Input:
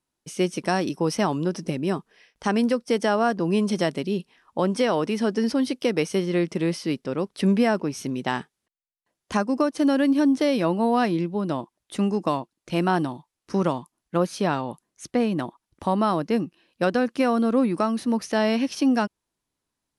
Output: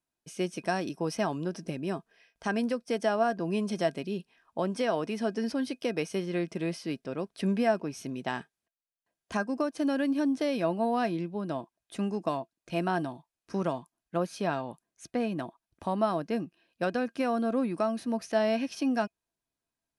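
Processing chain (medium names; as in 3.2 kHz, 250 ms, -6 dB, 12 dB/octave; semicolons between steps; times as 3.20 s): small resonant body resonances 670/1600/2500 Hz, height 11 dB, ringing for 90 ms; trim -8 dB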